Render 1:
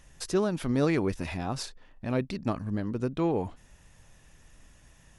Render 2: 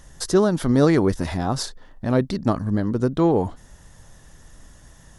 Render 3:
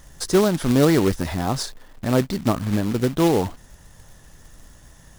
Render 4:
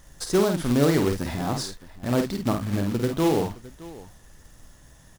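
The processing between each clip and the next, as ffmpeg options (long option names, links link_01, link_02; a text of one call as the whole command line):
ffmpeg -i in.wav -af "equalizer=frequency=2500:width_type=o:width=0.39:gain=-12.5,volume=9dB" out.wav
ffmpeg -i in.wav -af "acrusher=bits=3:mode=log:mix=0:aa=0.000001" out.wav
ffmpeg -i in.wav -af "aecho=1:1:50|616:0.531|0.119,volume=-4.5dB" out.wav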